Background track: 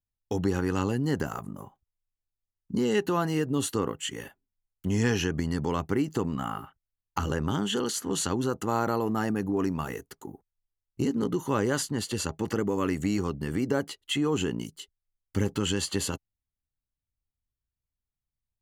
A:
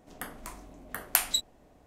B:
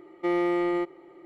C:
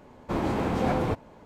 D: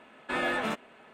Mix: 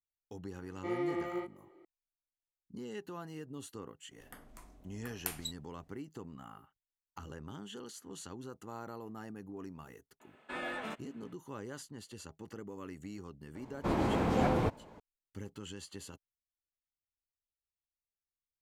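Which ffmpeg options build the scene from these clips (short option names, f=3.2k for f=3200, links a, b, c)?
-filter_complex "[0:a]volume=-18dB[a];[2:a]flanger=delay=20:depth=4.6:speed=2.2[b];[1:a]lowshelf=f=190:g=6[c];[b]atrim=end=1.25,asetpts=PTS-STARTPTS,volume=-7.5dB,afade=t=in:d=0.004:c=hsin,afade=t=out:st=1.246:d=0.004:c=hsin,adelay=600[d];[c]atrim=end=1.86,asetpts=PTS-STARTPTS,volume=-13.5dB,afade=t=in:d=0.004:c=hsin,afade=t=out:st=1.856:d=0.004:c=hsin,adelay=4110[e];[4:a]atrim=end=1.13,asetpts=PTS-STARTPTS,volume=-10dB,afade=t=in:d=0.004:c=hsin,afade=t=out:st=1.126:d=0.004:c=hsin,adelay=10200[f];[3:a]atrim=end=1.45,asetpts=PTS-STARTPTS,volume=-3.5dB,afade=t=in:d=0.004:c=hsin,afade=t=out:st=1.446:d=0.004:c=hsin,adelay=13550[g];[a][d][e][f][g]amix=inputs=5:normalize=0"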